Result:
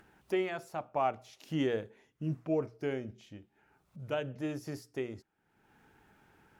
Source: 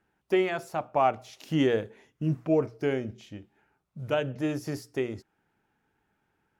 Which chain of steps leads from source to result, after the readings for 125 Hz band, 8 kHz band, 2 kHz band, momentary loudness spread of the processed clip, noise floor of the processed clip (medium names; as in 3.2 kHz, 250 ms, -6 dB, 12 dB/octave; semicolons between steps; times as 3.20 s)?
-7.0 dB, no reading, -7.0 dB, 17 LU, -76 dBFS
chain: upward compressor, threshold -41 dBFS; trim -7 dB